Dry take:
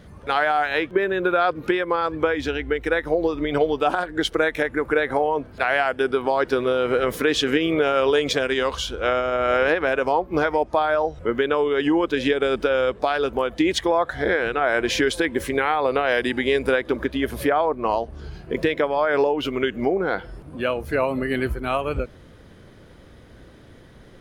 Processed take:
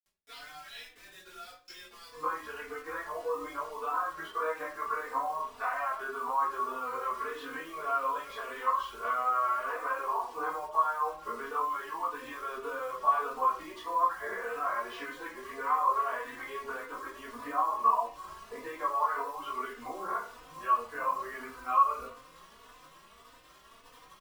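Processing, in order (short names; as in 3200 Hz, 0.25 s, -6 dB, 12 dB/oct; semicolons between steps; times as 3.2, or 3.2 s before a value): compressor 5:1, threshold -25 dBFS, peak gain reduction 10 dB; chorus voices 4, 0.28 Hz, delay 18 ms, depth 3.7 ms; band-pass 5400 Hz, Q 8.9, from 2.12 s 1100 Hz; bit-crush 11-bit; echo 0.327 s -24 dB; shoebox room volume 31 m³, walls mixed, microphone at 1.5 m; endless flanger 3.3 ms +1.7 Hz; gain +8 dB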